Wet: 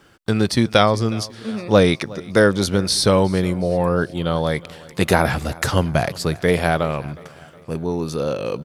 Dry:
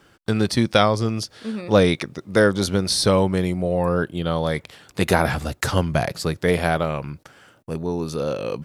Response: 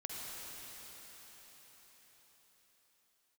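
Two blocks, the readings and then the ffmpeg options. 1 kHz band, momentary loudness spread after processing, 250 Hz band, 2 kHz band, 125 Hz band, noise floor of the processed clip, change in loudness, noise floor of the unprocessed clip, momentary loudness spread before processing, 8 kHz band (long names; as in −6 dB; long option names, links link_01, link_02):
+2.0 dB, 12 LU, +2.0 dB, +2.0 dB, +2.0 dB, −45 dBFS, +2.0 dB, −58 dBFS, 12 LU, +2.0 dB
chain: -af "aecho=1:1:364|728|1092|1456:0.0841|0.0429|0.0219|0.0112,volume=2dB"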